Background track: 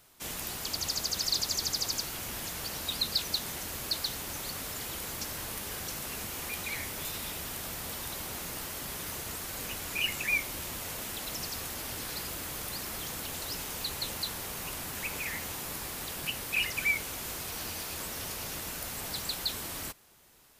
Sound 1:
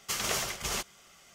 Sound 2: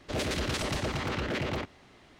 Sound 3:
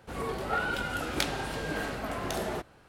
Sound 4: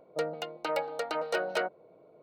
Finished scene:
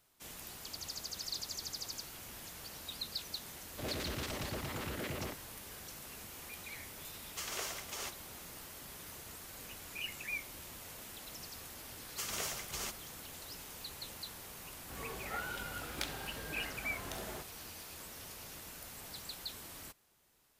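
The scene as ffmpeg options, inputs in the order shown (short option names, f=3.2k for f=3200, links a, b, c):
-filter_complex "[1:a]asplit=2[a][b];[0:a]volume=-11dB[c];[a]highpass=f=280:w=0.5412,highpass=f=280:w=1.3066[d];[b]crystalizer=i=0.5:c=0[e];[3:a]equalizer=f=380:w=0.36:g=-5[f];[2:a]atrim=end=2.19,asetpts=PTS-STARTPTS,volume=-9dB,afade=t=in:d=0.004:c=hsin,afade=t=out:st=2.186:d=0.004:c=hsin,adelay=162729S[g];[d]atrim=end=1.34,asetpts=PTS-STARTPTS,volume=-9.5dB,afade=t=in:d=0.004:c=hsin,afade=t=out:st=1.336:d=0.004:c=hsin,adelay=7280[h];[e]atrim=end=1.34,asetpts=PTS-STARTPTS,volume=-9.5dB,afade=t=in:d=0.004:c=hsin,afade=t=out:st=1.336:d=0.004:c=hsin,adelay=12090[i];[f]atrim=end=2.88,asetpts=PTS-STARTPTS,volume=-8.5dB,afade=t=in:d=0.004:c=hsin,afade=t=out:st=2.876:d=0.004:c=hsin,adelay=14810[j];[c][g][h][i][j]amix=inputs=5:normalize=0"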